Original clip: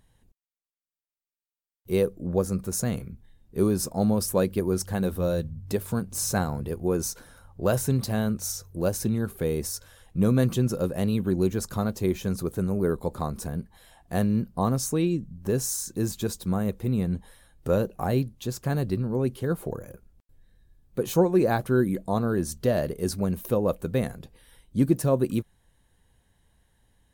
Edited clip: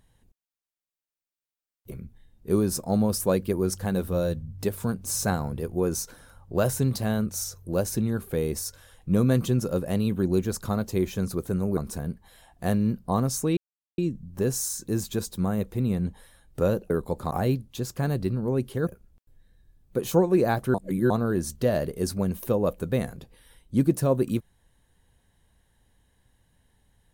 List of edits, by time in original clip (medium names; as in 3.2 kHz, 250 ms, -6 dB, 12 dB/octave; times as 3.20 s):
1.91–2.99 s: delete
12.85–13.26 s: move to 17.98 s
15.06 s: insert silence 0.41 s
19.54–19.89 s: delete
21.76–22.12 s: reverse